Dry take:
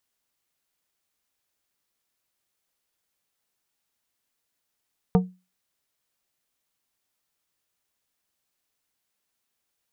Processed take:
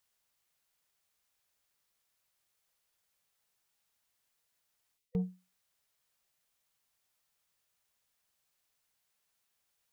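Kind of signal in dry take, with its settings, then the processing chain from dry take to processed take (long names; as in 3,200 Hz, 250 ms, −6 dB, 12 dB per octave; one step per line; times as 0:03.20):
struck glass plate, lowest mode 183 Hz, decay 0.28 s, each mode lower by 5 dB, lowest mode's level −12 dB
gain on a spectral selection 0:04.98–0:05.20, 500–1,900 Hz −16 dB
parametric band 290 Hz −7.5 dB 0.9 octaves
reversed playback
downward compressor 6 to 1, threshold −31 dBFS
reversed playback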